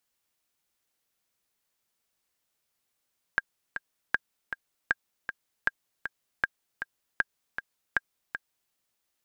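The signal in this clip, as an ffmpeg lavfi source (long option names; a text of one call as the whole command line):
ffmpeg -f lavfi -i "aevalsrc='pow(10,(-10-9*gte(mod(t,2*60/157),60/157))/20)*sin(2*PI*1610*mod(t,60/157))*exp(-6.91*mod(t,60/157)/0.03)':duration=5.35:sample_rate=44100" out.wav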